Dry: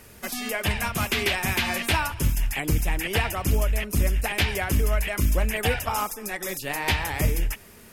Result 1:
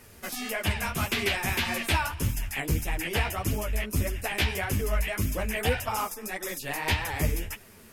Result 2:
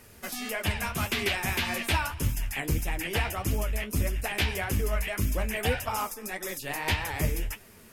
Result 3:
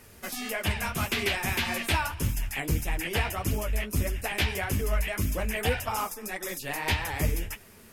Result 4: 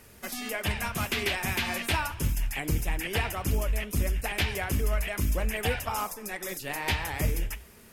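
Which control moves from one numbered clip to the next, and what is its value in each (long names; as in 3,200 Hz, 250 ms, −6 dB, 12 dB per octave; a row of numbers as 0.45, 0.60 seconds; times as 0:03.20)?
flanger, regen: −2, +46, −26, −84%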